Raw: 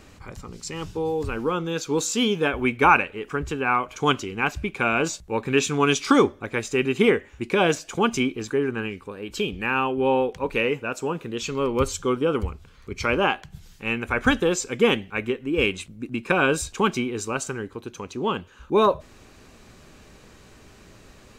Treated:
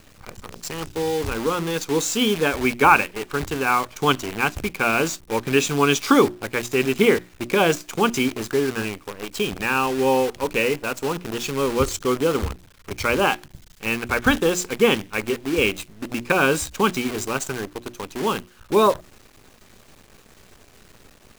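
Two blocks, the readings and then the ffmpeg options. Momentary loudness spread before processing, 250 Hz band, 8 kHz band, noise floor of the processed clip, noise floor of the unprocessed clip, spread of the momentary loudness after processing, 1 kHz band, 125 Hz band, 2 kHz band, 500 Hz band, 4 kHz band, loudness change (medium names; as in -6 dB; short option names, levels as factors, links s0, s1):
12 LU, +1.5 dB, +3.5 dB, -52 dBFS, -50 dBFS, 12 LU, +2.0 dB, +1.0 dB, +2.0 dB, +2.0 dB, +3.0 dB, +2.0 dB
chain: -af "acrusher=bits=6:dc=4:mix=0:aa=0.000001,bandreject=f=60:t=h:w=6,bandreject=f=120:t=h:w=6,bandreject=f=180:t=h:w=6,bandreject=f=240:t=h:w=6,bandreject=f=300:t=h:w=6,bandreject=f=360:t=h:w=6,volume=1.26"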